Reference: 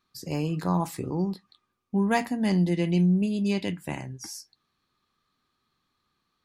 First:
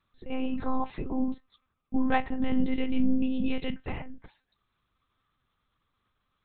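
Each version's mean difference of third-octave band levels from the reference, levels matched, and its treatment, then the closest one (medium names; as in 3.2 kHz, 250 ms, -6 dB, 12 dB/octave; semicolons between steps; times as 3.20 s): 8.0 dB: monotone LPC vocoder at 8 kHz 260 Hz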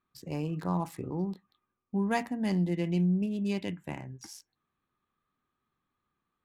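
1.5 dB: local Wiener filter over 9 samples; trim -5 dB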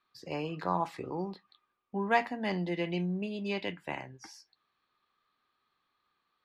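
4.5 dB: three-band isolator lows -13 dB, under 410 Hz, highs -23 dB, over 4.1 kHz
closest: second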